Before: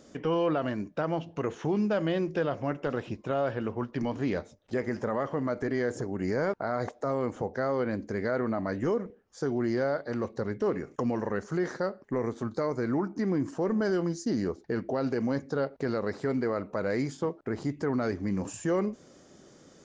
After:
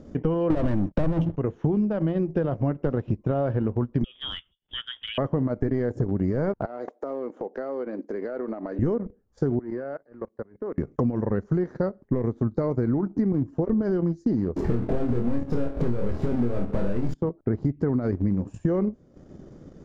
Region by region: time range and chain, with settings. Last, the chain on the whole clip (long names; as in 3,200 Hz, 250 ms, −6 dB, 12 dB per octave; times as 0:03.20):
0:00.50–0:01.36: EQ curve with evenly spaced ripples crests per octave 1.2, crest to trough 7 dB + leveller curve on the samples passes 5
0:04.04–0:05.18: voice inversion scrambler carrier 3,500 Hz + multiband upward and downward expander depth 40%
0:06.65–0:08.79: high-pass filter 300 Hz 24 dB per octave + downward compressor 3 to 1, threshold −35 dBFS
0:09.59–0:10.78: three-way crossover with the lows and the highs turned down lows −15 dB, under 250 Hz, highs −13 dB, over 2,400 Hz + output level in coarse steps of 16 dB + Chebyshev low-pass with heavy ripple 6,500 Hz, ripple 6 dB
0:13.32–0:13.83: low-shelf EQ 130 Hz +5.5 dB + notch comb filter 190 Hz
0:14.56–0:17.14: downward compressor 1.5 to 1, threshold −37 dBFS + power curve on the samples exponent 0.35 + flutter between parallel walls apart 4.3 metres, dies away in 0.35 s
whole clip: spectral tilt −4.5 dB per octave; downward compressor 6 to 1, threshold −22 dBFS; transient designer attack +1 dB, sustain −11 dB; level +1.5 dB